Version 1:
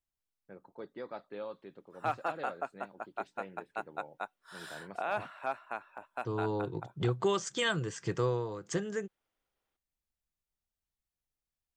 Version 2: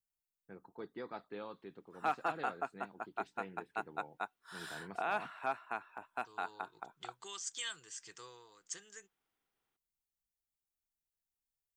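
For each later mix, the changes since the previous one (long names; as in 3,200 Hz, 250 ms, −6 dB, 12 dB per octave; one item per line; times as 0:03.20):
second voice: add first difference
master: add parametric band 570 Hz −13.5 dB 0.2 octaves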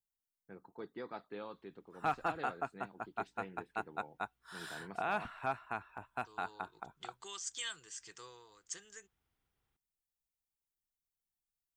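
background: remove high-pass filter 270 Hz 12 dB per octave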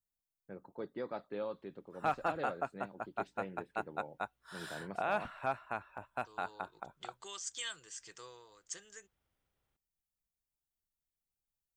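first voice: add low-shelf EQ 420 Hz +5 dB
master: add parametric band 570 Hz +13.5 dB 0.2 octaves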